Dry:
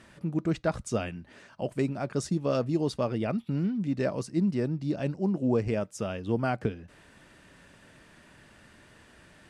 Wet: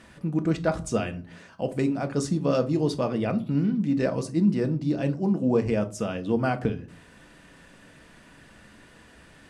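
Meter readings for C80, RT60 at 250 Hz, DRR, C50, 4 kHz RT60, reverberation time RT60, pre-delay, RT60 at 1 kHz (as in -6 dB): 23.5 dB, 0.70 s, 7.5 dB, 17.5 dB, 0.20 s, 0.45 s, 4 ms, 0.40 s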